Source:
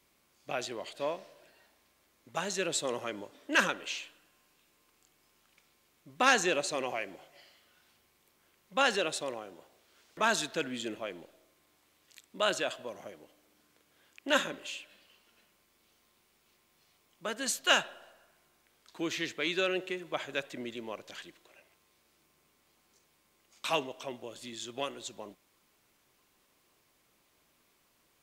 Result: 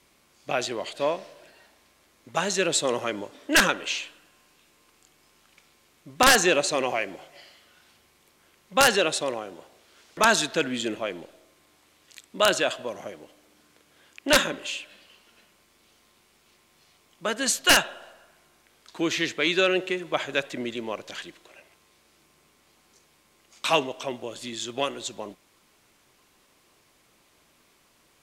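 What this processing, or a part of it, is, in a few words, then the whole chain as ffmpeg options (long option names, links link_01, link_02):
overflowing digital effects unit: -af "aeval=exprs='(mod(5.01*val(0)+1,2)-1)/5.01':channel_layout=same,lowpass=12000,volume=8.5dB"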